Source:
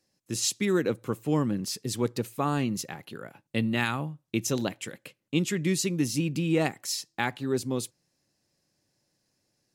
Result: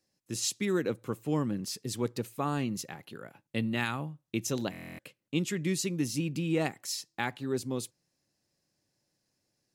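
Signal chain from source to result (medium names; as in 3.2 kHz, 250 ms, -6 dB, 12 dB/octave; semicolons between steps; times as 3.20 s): buffer glitch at 4.71 s, samples 1024, times 11; trim -4 dB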